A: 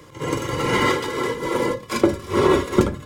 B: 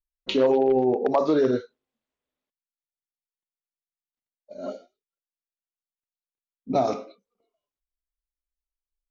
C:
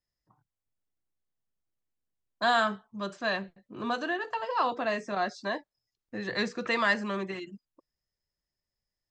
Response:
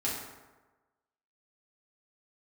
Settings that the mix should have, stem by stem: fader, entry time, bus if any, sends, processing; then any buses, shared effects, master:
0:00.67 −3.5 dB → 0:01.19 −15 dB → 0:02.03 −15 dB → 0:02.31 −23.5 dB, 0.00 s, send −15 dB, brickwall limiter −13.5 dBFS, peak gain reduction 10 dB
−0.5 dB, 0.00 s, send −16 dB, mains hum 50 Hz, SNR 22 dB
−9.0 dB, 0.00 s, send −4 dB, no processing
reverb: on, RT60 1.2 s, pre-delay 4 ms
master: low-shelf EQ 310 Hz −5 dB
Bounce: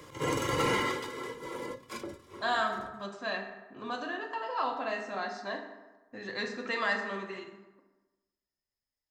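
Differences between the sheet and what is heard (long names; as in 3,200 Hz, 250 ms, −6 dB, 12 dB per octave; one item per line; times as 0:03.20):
stem A: send −15 dB → −22 dB
stem B: muted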